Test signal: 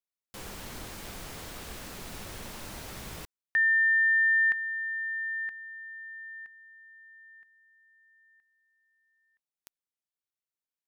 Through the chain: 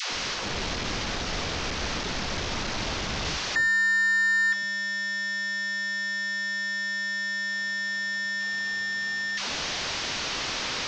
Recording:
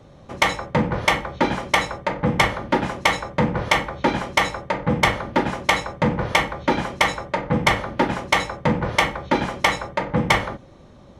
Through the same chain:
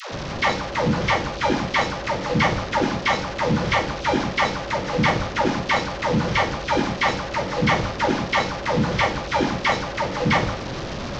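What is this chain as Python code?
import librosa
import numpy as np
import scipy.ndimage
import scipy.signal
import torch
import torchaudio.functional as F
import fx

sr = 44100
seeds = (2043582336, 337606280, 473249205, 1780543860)

y = fx.delta_mod(x, sr, bps=32000, step_db=-23.5)
y = fx.dispersion(y, sr, late='lows', ms=127.0, hz=470.0)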